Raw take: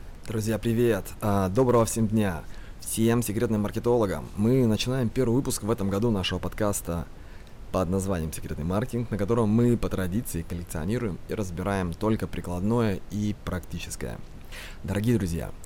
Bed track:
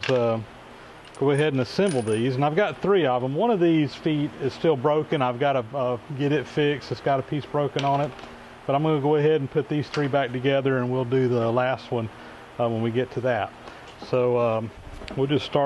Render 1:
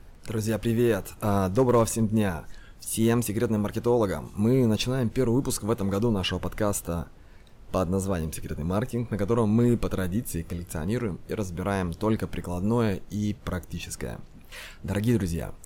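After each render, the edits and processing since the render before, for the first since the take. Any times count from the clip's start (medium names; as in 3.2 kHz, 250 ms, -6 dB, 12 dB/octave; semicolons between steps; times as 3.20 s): noise print and reduce 7 dB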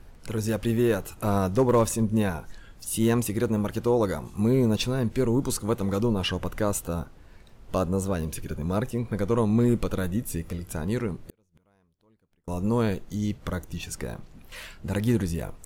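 11.23–12.48 s: inverted gate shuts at -25 dBFS, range -39 dB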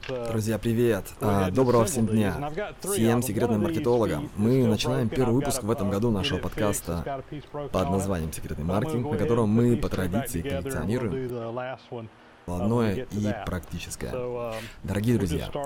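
add bed track -10 dB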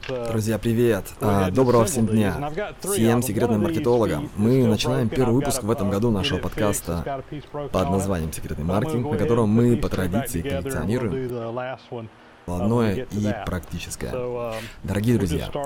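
trim +3.5 dB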